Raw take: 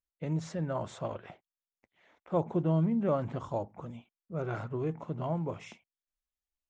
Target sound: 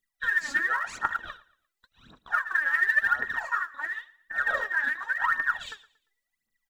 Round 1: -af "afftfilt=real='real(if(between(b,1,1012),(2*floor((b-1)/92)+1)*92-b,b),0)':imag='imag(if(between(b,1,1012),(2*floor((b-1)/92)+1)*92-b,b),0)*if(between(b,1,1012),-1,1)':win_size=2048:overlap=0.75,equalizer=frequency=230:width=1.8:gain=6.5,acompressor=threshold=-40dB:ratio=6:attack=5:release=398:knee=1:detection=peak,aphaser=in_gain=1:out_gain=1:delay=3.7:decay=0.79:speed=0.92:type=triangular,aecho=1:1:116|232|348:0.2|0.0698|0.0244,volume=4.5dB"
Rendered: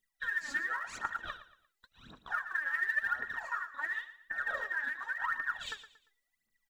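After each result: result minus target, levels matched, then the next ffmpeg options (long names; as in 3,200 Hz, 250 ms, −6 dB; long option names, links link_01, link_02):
downward compressor: peak gain reduction +8.5 dB; echo-to-direct +6.5 dB
-af "afftfilt=real='real(if(between(b,1,1012),(2*floor((b-1)/92)+1)*92-b,b),0)':imag='imag(if(between(b,1,1012),(2*floor((b-1)/92)+1)*92-b,b),0)*if(between(b,1,1012),-1,1)':win_size=2048:overlap=0.75,equalizer=frequency=230:width=1.8:gain=6.5,acompressor=threshold=-29.5dB:ratio=6:attack=5:release=398:knee=1:detection=peak,aphaser=in_gain=1:out_gain=1:delay=3.7:decay=0.79:speed=0.92:type=triangular,aecho=1:1:116|232|348:0.2|0.0698|0.0244,volume=4.5dB"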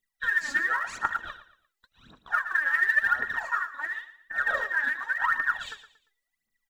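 echo-to-direct +6.5 dB
-af "afftfilt=real='real(if(between(b,1,1012),(2*floor((b-1)/92)+1)*92-b,b),0)':imag='imag(if(between(b,1,1012),(2*floor((b-1)/92)+1)*92-b,b),0)*if(between(b,1,1012),-1,1)':win_size=2048:overlap=0.75,equalizer=frequency=230:width=1.8:gain=6.5,acompressor=threshold=-29.5dB:ratio=6:attack=5:release=398:knee=1:detection=peak,aphaser=in_gain=1:out_gain=1:delay=3.7:decay=0.79:speed=0.92:type=triangular,aecho=1:1:116|232|348:0.0944|0.033|0.0116,volume=4.5dB"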